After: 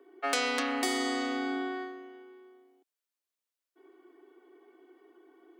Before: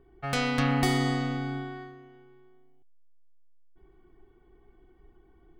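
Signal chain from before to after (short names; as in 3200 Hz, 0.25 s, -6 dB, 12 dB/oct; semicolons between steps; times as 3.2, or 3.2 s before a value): dynamic EQ 7600 Hz, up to +6 dB, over -52 dBFS, Q 0.84; compressor 6:1, threshold -29 dBFS, peak gain reduction 9 dB; steep high-pass 270 Hz 72 dB/oct; notch 800 Hz, Q 12; gain +5 dB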